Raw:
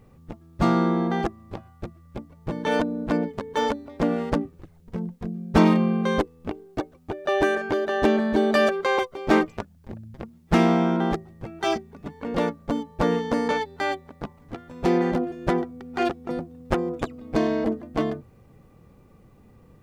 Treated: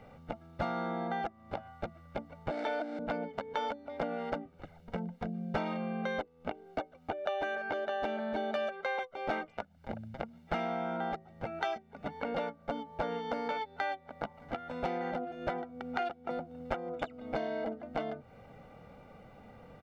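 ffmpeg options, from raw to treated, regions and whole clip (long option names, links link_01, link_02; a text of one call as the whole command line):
ffmpeg -i in.wav -filter_complex "[0:a]asettb=1/sr,asplit=3[link_01][link_02][link_03];[link_01]atrim=end=2.504[link_04];[link_02]atrim=start=2.5:end=2.99,asetpts=PTS-STARTPTS,afade=type=in:duration=0.004:curve=qsin,afade=type=out:start_time=0.486:duration=0.004:curve=qsin,aeval=exprs='val(0)+0.5*0.0316*sgn(val(0))':channel_layout=same,highpass=frequency=280:width=0.5412,highpass=frequency=280:width=1.3066,equalizer=frequency=320:width_type=q:width=4:gain=8,equalizer=frequency=480:width_type=q:width=4:gain=-6,equalizer=frequency=690:width_type=q:width=4:gain=5,equalizer=frequency=1000:width_type=q:width=4:gain=-9,equalizer=frequency=2900:width_type=q:width=4:gain=-8,equalizer=frequency=6400:width_type=q:width=4:gain=-6,lowpass=frequency=8000:width=0.5412,lowpass=frequency=8000:width=1.3066[link_05];[link_03]atrim=start=2.986[link_06];[link_04][link_05]acrossfade=duration=0.004:curve1=hsin:curve2=qsin[link_07];[link_07][link_06]acrossfade=duration=0.004:curve1=qsin:curve2=hsin,acrossover=split=250 4100:gain=0.178 1 0.141[link_08][link_09][link_10];[link_08][link_09][link_10]amix=inputs=3:normalize=0,aecho=1:1:1.4:0.67,acompressor=threshold=-39dB:ratio=6,volume=5.5dB" out.wav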